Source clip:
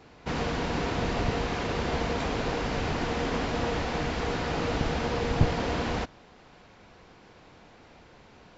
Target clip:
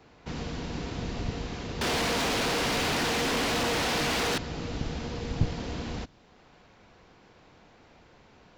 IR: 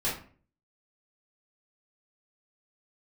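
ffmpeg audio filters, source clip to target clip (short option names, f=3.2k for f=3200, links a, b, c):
-filter_complex "[0:a]acrossover=split=340|3000[a][b][c];[b]acompressor=threshold=-52dB:ratio=1.5[d];[a][d][c]amix=inputs=3:normalize=0,asettb=1/sr,asplit=3[e][f][g];[e]atrim=end=1.814[h];[f]atrim=start=1.81:end=4.38,asetpts=PTS-STARTPTS,afade=t=in:d=0.004:c=qsin,afade=t=out:st=2.566:d=0.004:c=qsin,asplit=2[i][j];[j]highpass=f=720:p=1,volume=34dB,asoftclip=type=tanh:threshold=-18dB[k];[i][k]amix=inputs=2:normalize=0,lowpass=f=6.4k:p=1,volume=-6dB[l];[g]atrim=start=4.376[m];[h][l]acrossfade=d=0.004:c1=hsin:c2=qsin[n];[n][m]acrossfade=d=0.004:c1=qsin:c2=hsin,volume=-3dB"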